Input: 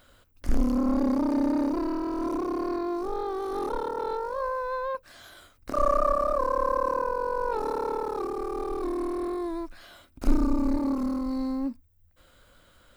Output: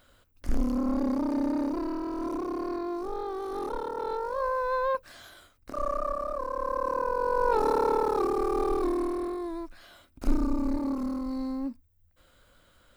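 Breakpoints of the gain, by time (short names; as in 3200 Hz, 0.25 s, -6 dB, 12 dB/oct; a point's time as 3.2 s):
3.87 s -3 dB
4.92 s +4 dB
5.73 s -7 dB
6.49 s -7 dB
7.53 s +4.5 dB
8.7 s +4.5 dB
9.38 s -3 dB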